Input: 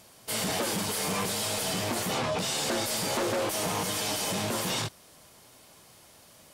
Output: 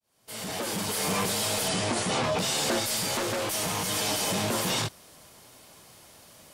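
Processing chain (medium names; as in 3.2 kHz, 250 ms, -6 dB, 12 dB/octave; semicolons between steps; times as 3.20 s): fade-in on the opening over 1.11 s; 1.68–2.24 s: brick-wall FIR low-pass 11 kHz; 2.79–3.91 s: peaking EQ 460 Hz -5 dB 2.9 oct; trim +2.5 dB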